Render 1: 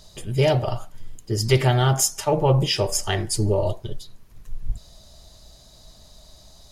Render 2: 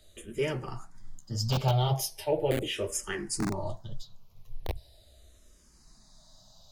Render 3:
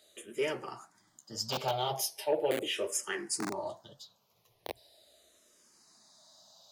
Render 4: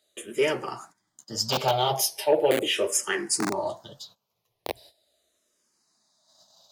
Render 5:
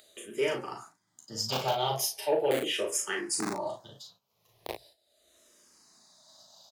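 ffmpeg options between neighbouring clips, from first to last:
-filter_complex "[0:a]flanger=delay=8.3:depth=6.4:regen=-44:speed=2:shape=sinusoidal,acrossover=split=140|6800[a][b][c];[a]aeval=exprs='(mod(11.9*val(0)+1,2)-1)/11.9':c=same[d];[d][b][c]amix=inputs=3:normalize=0,asplit=2[e][f];[f]afreqshift=-0.39[g];[e][g]amix=inputs=2:normalize=1,volume=-2dB"
-af "asoftclip=type=tanh:threshold=-15.5dB,highpass=340"
-af "agate=range=-16dB:threshold=-58dB:ratio=16:detection=peak,volume=8.5dB"
-filter_complex "[0:a]asplit=2[a][b];[b]aecho=0:1:37|54:0.596|0.224[c];[a][c]amix=inputs=2:normalize=0,acompressor=mode=upward:threshold=-41dB:ratio=2.5,volume=-6.5dB"

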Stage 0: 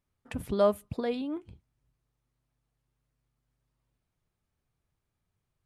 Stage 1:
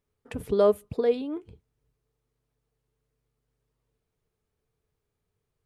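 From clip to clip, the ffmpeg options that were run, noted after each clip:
-af "equalizer=f=440:w=4.9:g=14.5"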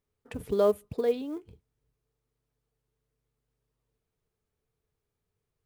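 -af "acrusher=bits=8:mode=log:mix=0:aa=0.000001,volume=-3dB"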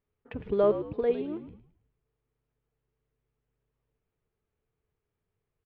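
-filter_complex "[0:a]lowpass=f=3k:w=0.5412,lowpass=f=3k:w=1.3066,asplit=2[a][b];[b]asplit=4[c][d][e][f];[c]adelay=108,afreqshift=-59,volume=-11dB[g];[d]adelay=216,afreqshift=-118,volume=-19.9dB[h];[e]adelay=324,afreqshift=-177,volume=-28.7dB[i];[f]adelay=432,afreqshift=-236,volume=-37.6dB[j];[g][h][i][j]amix=inputs=4:normalize=0[k];[a][k]amix=inputs=2:normalize=0"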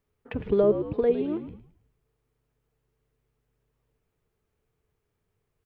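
-filter_complex "[0:a]acrossover=split=490[a][b];[b]acompressor=threshold=-36dB:ratio=6[c];[a][c]amix=inputs=2:normalize=0,volume=6dB"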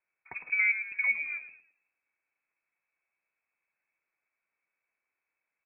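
-af "highpass=f=480:p=1,lowpass=f=2.3k:t=q:w=0.5098,lowpass=f=2.3k:t=q:w=0.6013,lowpass=f=2.3k:t=q:w=0.9,lowpass=f=2.3k:t=q:w=2.563,afreqshift=-2700,volume=-2.5dB"

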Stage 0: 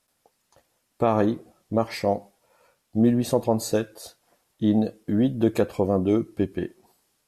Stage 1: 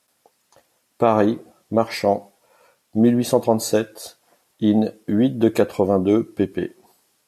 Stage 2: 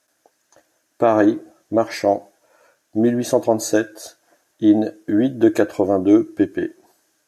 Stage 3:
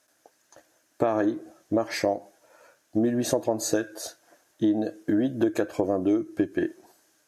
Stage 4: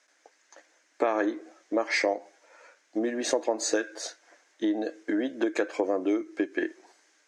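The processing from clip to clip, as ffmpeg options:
-af "highpass=f=170:p=1,volume=5.5dB"
-af "equalizer=f=200:t=o:w=0.33:g=-5,equalizer=f=315:t=o:w=0.33:g=11,equalizer=f=630:t=o:w=0.33:g=8,equalizer=f=1.6k:t=o:w=0.33:g=11,equalizer=f=6.3k:t=o:w=0.33:g=9,volume=-3.5dB"
-af "acompressor=threshold=-21dB:ratio=5"
-af "highpass=f=310:w=0.5412,highpass=f=310:w=1.3066,equalizer=f=350:t=q:w=4:g=-4,equalizer=f=640:t=q:w=4:g=-5,equalizer=f=2.1k:t=q:w=4:g=9,lowpass=f=7.4k:w=0.5412,lowpass=f=7.4k:w=1.3066,volume=1.5dB"

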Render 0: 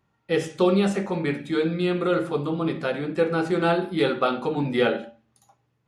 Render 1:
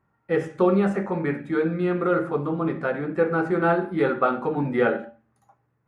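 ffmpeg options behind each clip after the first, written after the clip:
-af "highshelf=f=2.4k:t=q:w=1.5:g=-12"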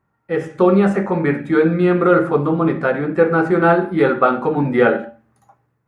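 -af "dynaudnorm=f=150:g=7:m=8.5dB,volume=1dB"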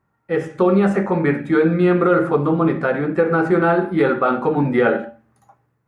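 -af "alimiter=limit=-6.5dB:level=0:latency=1:release=74"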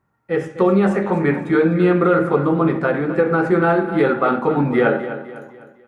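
-af "aecho=1:1:253|506|759|1012:0.251|0.105|0.0443|0.0186"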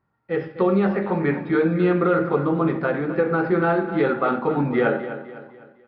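-af "aresample=11025,aresample=44100,volume=-4dB"

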